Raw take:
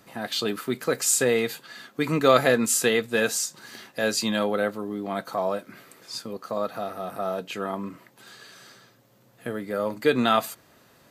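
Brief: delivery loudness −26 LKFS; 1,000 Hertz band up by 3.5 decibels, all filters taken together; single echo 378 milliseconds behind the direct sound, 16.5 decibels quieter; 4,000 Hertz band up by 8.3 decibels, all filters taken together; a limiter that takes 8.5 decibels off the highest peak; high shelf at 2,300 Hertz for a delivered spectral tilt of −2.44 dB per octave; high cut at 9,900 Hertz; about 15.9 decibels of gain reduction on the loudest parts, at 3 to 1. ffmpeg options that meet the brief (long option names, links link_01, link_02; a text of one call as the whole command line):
ffmpeg -i in.wav -af "lowpass=9900,equalizer=frequency=1000:width_type=o:gain=3,highshelf=frequency=2300:gain=6,equalizer=frequency=4000:width_type=o:gain=4.5,acompressor=threshold=-32dB:ratio=3,alimiter=limit=-23.5dB:level=0:latency=1,aecho=1:1:378:0.15,volume=9dB" out.wav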